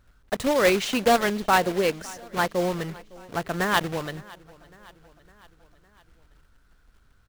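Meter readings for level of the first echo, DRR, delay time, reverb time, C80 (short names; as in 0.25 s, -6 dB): -22.5 dB, none, 0.558 s, none, none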